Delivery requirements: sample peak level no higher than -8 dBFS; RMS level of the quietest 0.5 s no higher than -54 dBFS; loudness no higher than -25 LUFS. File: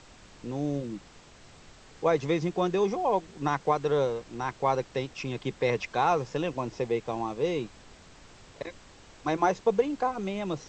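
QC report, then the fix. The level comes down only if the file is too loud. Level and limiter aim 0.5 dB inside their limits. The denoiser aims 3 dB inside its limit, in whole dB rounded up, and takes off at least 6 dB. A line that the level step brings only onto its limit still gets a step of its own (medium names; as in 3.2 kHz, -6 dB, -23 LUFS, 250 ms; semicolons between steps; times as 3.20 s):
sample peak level -11.5 dBFS: pass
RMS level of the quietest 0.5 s -52 dBFS: fail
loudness -29.0 LUFS: pass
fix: noise reduction 6 dB, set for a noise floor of -52 dBFS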